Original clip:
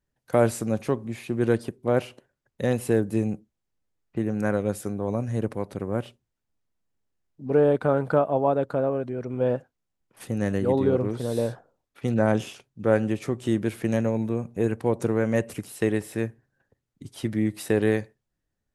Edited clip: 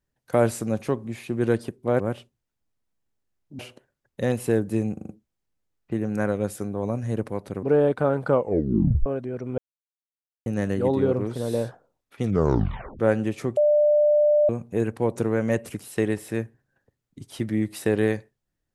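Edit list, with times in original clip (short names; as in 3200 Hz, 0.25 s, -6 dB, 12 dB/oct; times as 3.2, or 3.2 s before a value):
3.34 stutter 0.04 s, 5 plays
5.88–7.47 move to 2
8.12 tape stop 0.78 s
9.42–10.3 mute
12.06 tape stop 0.77 s
13.41–14.33 bleep 595 Hz -15 dBFS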